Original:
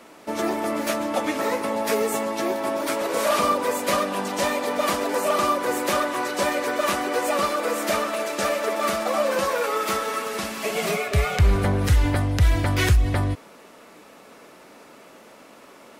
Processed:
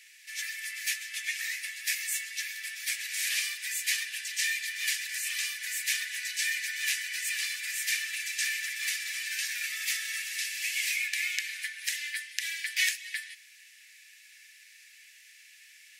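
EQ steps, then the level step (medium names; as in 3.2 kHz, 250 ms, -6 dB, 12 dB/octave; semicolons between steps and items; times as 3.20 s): rippled Chebyshev high-pass 1.7 kHz, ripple 3 dB; +1.5 dB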